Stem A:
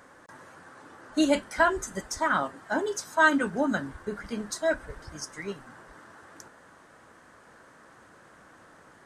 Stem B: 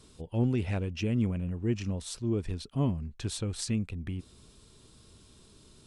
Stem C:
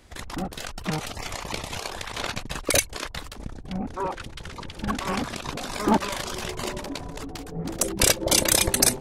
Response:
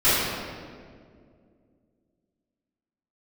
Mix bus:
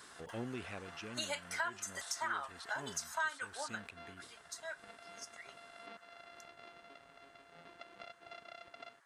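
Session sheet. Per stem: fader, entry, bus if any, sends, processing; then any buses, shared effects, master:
3.54 s -1 dB -> 3.82 s -11.5 dB, 0.00 s, no send, high-pass 920 Hz 12 dB/octave
+3.0 dB, 0.00 s, no send, decay stretcher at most 99 dB/s; auto duck -12 dB, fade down 1.00 s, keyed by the first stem
-18.5 dB, 0.00 s, no send, sorted samples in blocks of 64 samples; low-pass 4 kHz 24 dB/octave; compression 4:1, threshold -29 dBFS, peak gain reduction 12.5 dB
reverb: none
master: high-pass 720 Hz 6 dB/octave; compression 3:1, threshold -37 dBFS, peak gain reduction 14 dB

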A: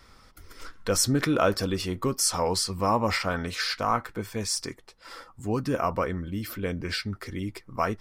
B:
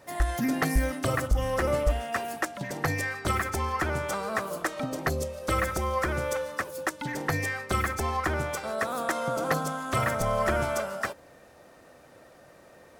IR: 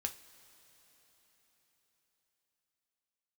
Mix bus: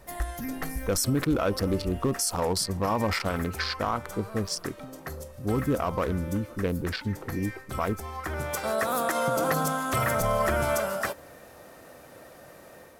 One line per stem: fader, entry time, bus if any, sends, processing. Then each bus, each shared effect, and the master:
+3.0 dB, 0.00 s, no send, local Wiener filter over 25 samples; level-controlled noise filter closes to 650 Hz, open at -24 dBFS
-1.5 dB, 0.00 s, send -18 dB, level rider gain up to 5 dB; auto duck -22 dB, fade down 0.85 s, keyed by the first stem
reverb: on, pre-delay 3 ms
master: peaking EQ 13 kHz +9.5 dB 0.62 oct; peak limiter -16.5 dBFS, peak gain reduction 9.5 dB

